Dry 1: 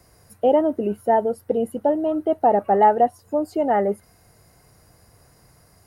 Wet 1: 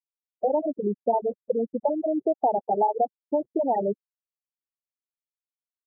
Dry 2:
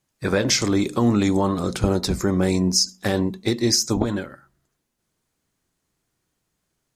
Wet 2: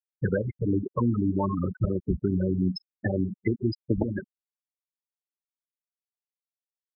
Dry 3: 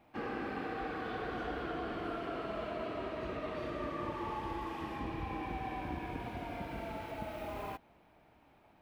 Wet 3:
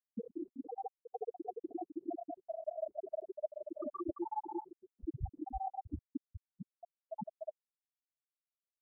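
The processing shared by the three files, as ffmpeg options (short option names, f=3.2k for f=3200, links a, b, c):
-filter_complex "[0:a]acrossover=split=81|1200|3100[a][b][c][d];[a]acompressor=threshold=-43dB:ratio=4[e];[b]acompressor=threshold=-32dB:ratio=4[f];[c]acompressor=threshold=-42dB:ratio=4[g];[d]acompressor=threshold=-48dB:ratio=4[h];[e][f][g][h]amix=inputs=4:normalize=0,afftfilt=real='re*gte(hypot(re,im),0.0891)':imag='im*gte(hypot(re,im),0.0891)':win_size=1024:overlap=0.75,afftfilt=real='re*(1-between(b*sr/1024,250*pow(4900/250,0.5+0.5*sin(2*PI*5.7*pts/sr))/1.41,250*pow(4900/250,0.5+0.5*sin(2*PI*5.7*pts/sr))*1.41))':imag='im*(1-between(b*sr/1024,250*pow(4900/250,0.5+0.5*sin(2*PI*5.7*pts/sr))/1.41,250*pow(4900/250,0.5+0.5*sin(2*PI*5.7*pts/sr))*1.41))':win_size=1024:overlap=0.75,volume=8dB"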